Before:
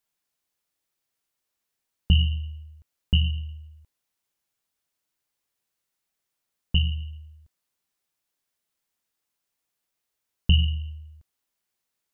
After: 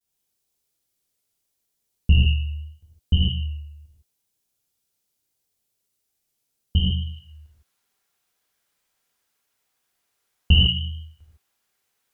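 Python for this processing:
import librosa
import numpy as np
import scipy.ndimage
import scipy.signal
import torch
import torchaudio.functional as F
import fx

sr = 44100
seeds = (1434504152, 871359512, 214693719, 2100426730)

y = fx.peak_eq(x, sr, hz=1400.0, db=fx.steps((0.0, -10.0), (7.04, 3.0)), octaves=2.3)
y = fx.vibrato(y, sr, rate_hz=0.76, depth_cents=69.0)
y = fx.rev_gated(y, sr, seeds[0], gate_ms=180, shape='flat', drr_db=-6.0)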